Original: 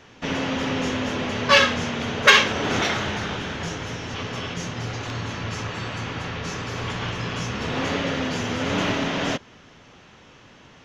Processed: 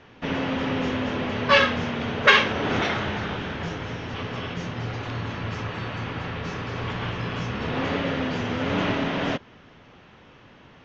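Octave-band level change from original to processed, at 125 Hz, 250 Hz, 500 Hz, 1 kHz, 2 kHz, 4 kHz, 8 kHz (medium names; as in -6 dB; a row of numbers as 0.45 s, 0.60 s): 0.0 dB, 0.0 dB, -0.5 dB, -1.0 dB, -2.0 dB, -4.5 dB, -12.5 dB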